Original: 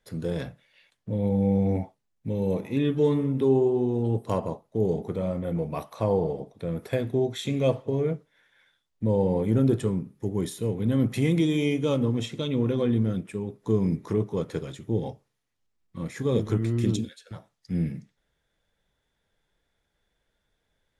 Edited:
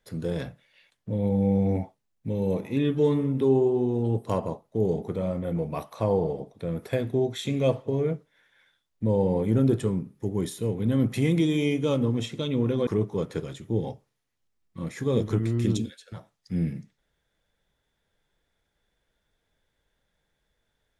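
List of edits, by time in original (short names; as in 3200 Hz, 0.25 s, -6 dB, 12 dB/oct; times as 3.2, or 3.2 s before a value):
12.87–14.06 cut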